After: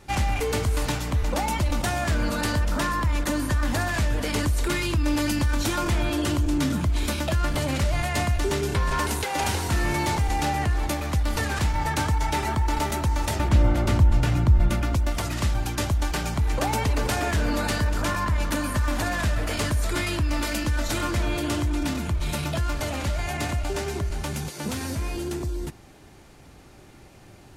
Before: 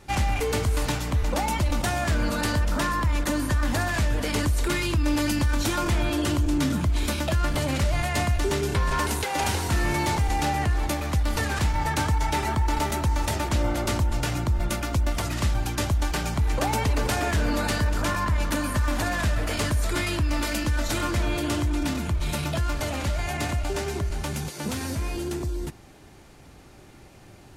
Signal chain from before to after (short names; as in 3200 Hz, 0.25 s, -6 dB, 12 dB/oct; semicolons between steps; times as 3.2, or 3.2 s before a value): 13.39–14.95 tone controls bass +7 dB, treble -6 dB